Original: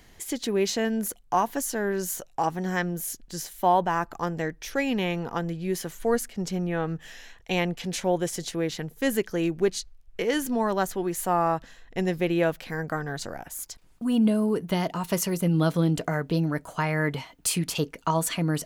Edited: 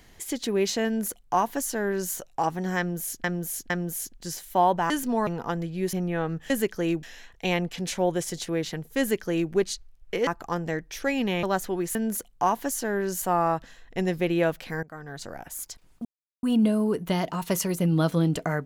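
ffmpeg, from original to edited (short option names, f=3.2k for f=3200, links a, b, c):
-filter_complex "[0:a]asplit=14[a][b][c][d][e][f][g][h][i][j][k][l][m][n];[a]atrim=end=3.242[o];[b]atrim=start=2.778:end=3.242[p];[c]atrim=start=2.778:end=3.982[q];[d]atrim=start=10.328:end=10.702[r];[e]atrim=start=5.138:end=5.802[s];[f]atrim=start=6.518:end=7.092[t];[g]atrim=start=9.048:end=9.582[u];[h]atrim=start=7.088:end=10.332[v];[i]atrim=start=3.978:end=5.142[w];[j]atrim=start=10.698:end=11.222[x];[k]atrim=start=0.858:end=2.132[y];[l]atrim=start=11.218:end=12.83,asetpts=PTS-STARTPTS,afade=t=out:st=1.608:d=0.004:c=hsin:silence=0.105925[z];[m]atrim=start=12.83:end=14.05,asetpts=PTS-STARTPTS,afade=t=in:d=0.68:silence=0.105925,afade=t=out:st=1.216:d=0.004:c=hsin,apad=pad_dur=0.38[aa];[n]atrim=start=14.05,asetpts=PTS-STARTPTS,afade=t=in:d=0.004:c=hsin[ab];[o][p]acrossfade=d=0.004:c1=hsin:c2=hsin[ac];[ac][q]acrossfade=d=0.004:c1=hsin:c2=hsin[ad];[ad][r]acrossfade=d=0.004:c1=hsin:c2=hsin[ae];[ae][s]acrossfade=d=0.004:c1=hsin:c2=hsin[af];[af][t]acrossfade=d=0.004:c1=hsin:c2=hsin[ag];[ag][u]acrossfade=d=0.004:c1=hsin:c2=hsin[ah];[ah][v]acrossfade=d=0.004:c1=hsin:c2=hsin[ai];[ai][w]acrossfade=d=0.004:c1=hsin:c2=hsin[aj];[aj][x]acrossfade=d=0.004:c1=hsin:c2=hsin[ak];[ak][y]acrossfade=d=0.004:c1=hsin:c2=hsin[al];[z][aa][ab]concat=n=3:v=0:a=1[am];[al][am]acrossfade=d=0.004:c1=hsin:c2=hsin"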